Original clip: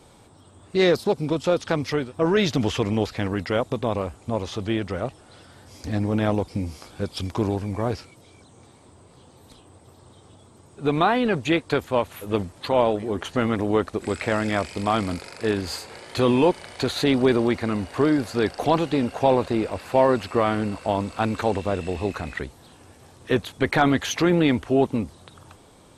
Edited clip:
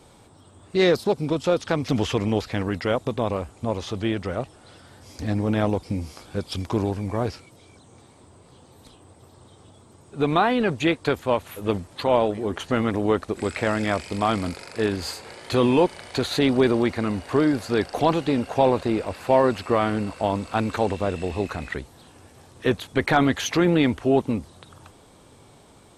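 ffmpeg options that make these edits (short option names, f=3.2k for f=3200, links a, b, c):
-filter_complex "[0:a]asplit=2[a][b];[a]atrim=end=1.882[c];[b]atrim=start=2.528[d];[c][d]acrossfade=d=0.004:c1=hsin:c2=hsin"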